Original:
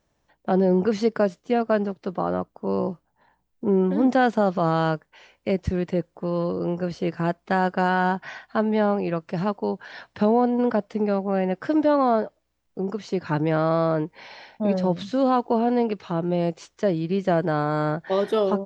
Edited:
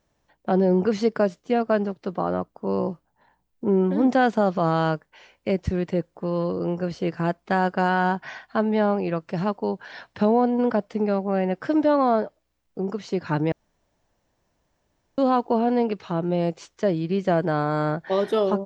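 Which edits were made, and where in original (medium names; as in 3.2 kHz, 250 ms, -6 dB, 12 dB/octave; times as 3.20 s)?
13.52–15.18 s: room tone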